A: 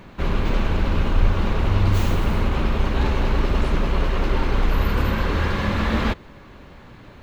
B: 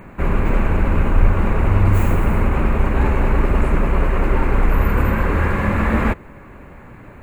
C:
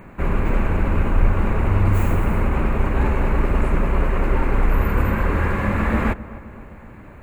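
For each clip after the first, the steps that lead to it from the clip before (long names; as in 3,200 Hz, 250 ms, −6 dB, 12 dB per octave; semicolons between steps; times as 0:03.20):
flat-topped bell 4,300 Hz −16 dB 1.2 octaves; level +4 dB
feedback echo with a low-pass in the loop 259 ms, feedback 60%, low-pass 1,600 Hz, level −17 dB; level −2.5 dB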